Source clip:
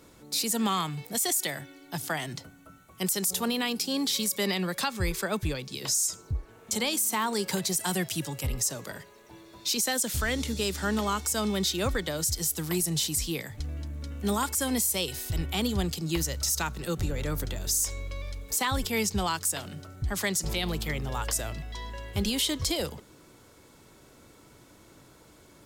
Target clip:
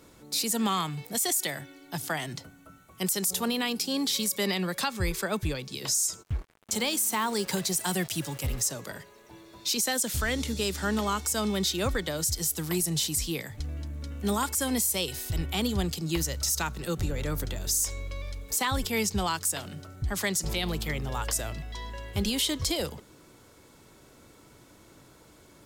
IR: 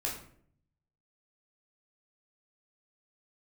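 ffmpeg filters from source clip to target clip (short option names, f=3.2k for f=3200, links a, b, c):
-filter_complex "[0:a]asplit=3[a][b][c];[a]afade=t=out:st=6.22:d=0.02[d];[b]acrusher=bits=6:mix=0:aa=0.5,afade=t=in:st=6.22:d=0.02,afade=t=out:st=8.67:d=0.02[e];[c]afade=t=in:st=8.67:d=0.02[f];[d][e][f]amix=inputs=3:normalize=0"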